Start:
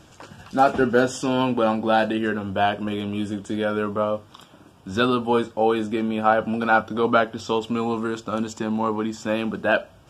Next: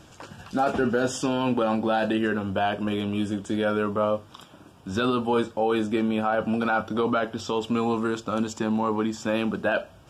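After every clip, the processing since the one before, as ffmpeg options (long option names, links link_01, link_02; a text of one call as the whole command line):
ffmpeg -i in.wav -af "alimiter=limit=-14dB:level=0:latency=1:release=20" out.wav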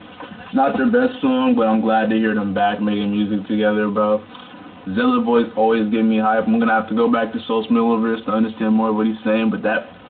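ffmpeg -i in.wav -af "aeval=exprs='val(0)+0.5*0.00891*sgn(val(0))':channel_layout=same,aecho=1:1:4:0.84,volume=3.5dB" -ar 8000 -c:a libspeex -b:a 15k out.spx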